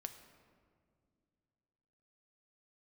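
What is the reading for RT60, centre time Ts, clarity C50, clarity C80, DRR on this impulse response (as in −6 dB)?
2.2 s, 19 ms, 10.0 dB, 11.0 dB, 7.0 dB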